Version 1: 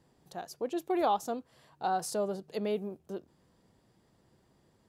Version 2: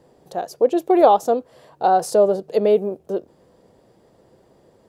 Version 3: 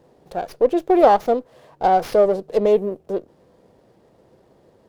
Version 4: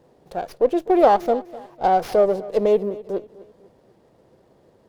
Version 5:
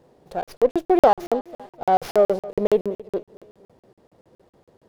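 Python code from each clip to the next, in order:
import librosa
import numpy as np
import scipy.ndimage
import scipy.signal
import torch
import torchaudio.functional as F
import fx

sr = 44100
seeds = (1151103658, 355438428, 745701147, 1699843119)

y1 = fx.peak_eq(x, sr, hz=520.0, db=12.5, octaves=1.3)
y1 = y1 * 10.0 ** (7.0 / 20.0)
y2 = fx.running_max(y1, sr, window=5)
y3 = fx.echo_feedback(y2, sr, ms=251, feedback_pct=39, wet_db=-19)
y3 = y3 * 10.0 ** (-1.5 / 20.0)
y4 = fx.buffer_crackle(y3, sr, first_s=0.43, period_s=0.14, block=2048, kind='zero')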